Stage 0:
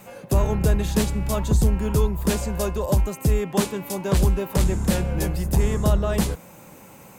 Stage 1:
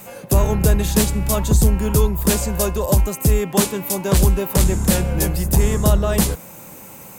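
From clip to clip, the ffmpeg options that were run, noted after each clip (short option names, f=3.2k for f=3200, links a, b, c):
-af "highshelf=f=6.6k:g=9.5,volume=4dB"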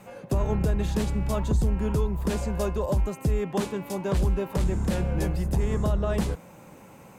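-af "aemphasis=mode=reproduction:type=75fm,alimiter=limit=-9.5dB:level=0:latency=1:release=85,volume=-6.5dB"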